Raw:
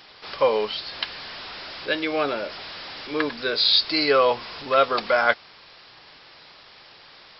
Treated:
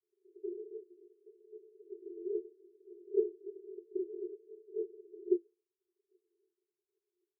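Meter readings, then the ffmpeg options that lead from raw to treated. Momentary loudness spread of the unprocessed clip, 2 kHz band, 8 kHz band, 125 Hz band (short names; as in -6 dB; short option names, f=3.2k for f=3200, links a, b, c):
17 LU, under -40 dB, n/a, under -40 dB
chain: -af "afftdn=nr=27:nf=-41,aeval=exprs='0.708*(cos(1*acos(clip(val(0)/0.708,-1,1)))-cos(1*PI/2))+0.316*(cos(3*acos(clip(val(0)/0.708,-1,1)))-cos(3*PI/2))':c=same,aresample=8000,acrusher=samples=37:mix=1:aa=0.000001:lfo=1:lforange=59.2:lforate=3.7,aresample=44100,aphaser=in_gain=1:out_gain=1:delay=4.6:decay=0.71:speed=0.32:type=sinusoidal,acrusher=bits=3:mode=log:mix=0:aa=0.000001,asuperpass=centerf=390:order=20:qfactor=3.9,volume=6dB"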